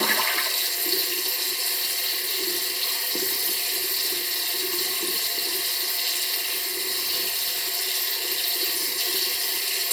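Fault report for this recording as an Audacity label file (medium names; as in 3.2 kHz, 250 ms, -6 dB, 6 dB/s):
1.720000	5.720000	clipped -19 dBFS
6.360000	7.740000	clipped -20.5 dBFS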